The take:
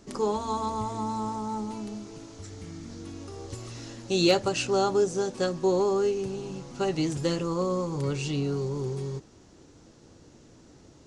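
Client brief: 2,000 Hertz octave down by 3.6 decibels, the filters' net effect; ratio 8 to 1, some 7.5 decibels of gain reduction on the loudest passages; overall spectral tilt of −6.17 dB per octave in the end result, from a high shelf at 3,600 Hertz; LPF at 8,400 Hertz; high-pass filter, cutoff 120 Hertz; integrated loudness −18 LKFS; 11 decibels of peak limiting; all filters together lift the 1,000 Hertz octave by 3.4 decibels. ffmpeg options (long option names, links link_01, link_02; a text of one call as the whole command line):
ffmpeg -i in.wav -af "highpass=120,lowpass=8400,equalizer=frequency=1000:width_type=o:gain=5.5,equalizer=frequency=2000:width_type=o:gain=-5,highshelf=frequency=3600:gain=-5,acompressor=threshold=-25dB:ratio=8,volume=19dB,alimiter=limit=-9dB:level=0:latency=1" out.wav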